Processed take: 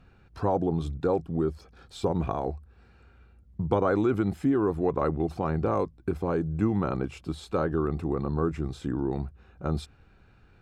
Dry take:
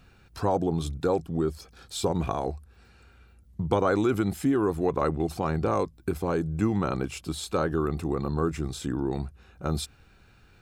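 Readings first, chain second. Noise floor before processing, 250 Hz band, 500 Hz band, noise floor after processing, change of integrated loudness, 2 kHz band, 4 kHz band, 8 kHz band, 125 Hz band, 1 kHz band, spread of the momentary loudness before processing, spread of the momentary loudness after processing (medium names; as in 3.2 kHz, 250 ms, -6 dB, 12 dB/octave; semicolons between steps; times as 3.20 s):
-57 dBFS, 0.0 dB, -0.5 dB, -58 dBFS, -0.5 dB, -3.0 dB, -8.0 dB, under -10 dB, 0.0 dB, -1.5 dB, 10 LU, 10 LU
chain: low-pass 1.6 kHz 6 dB/octave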